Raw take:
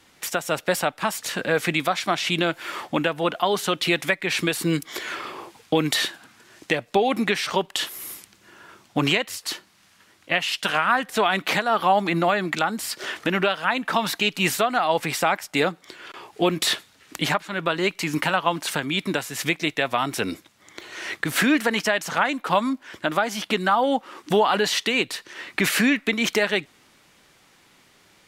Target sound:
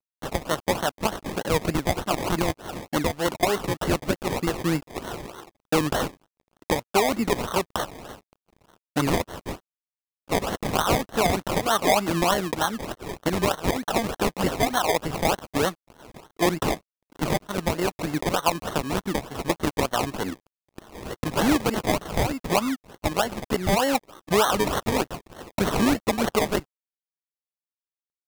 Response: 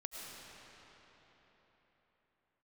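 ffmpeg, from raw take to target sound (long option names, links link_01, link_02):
-af "acrusher=samples=25:mix=1:aa=0.000001:lfo=1:lforange=15:lforate=3.3,aeval=exprs='sgn(val(0))*max(abs(val(0))-0.00562,0)':channel_layout=same,volume=-1dB"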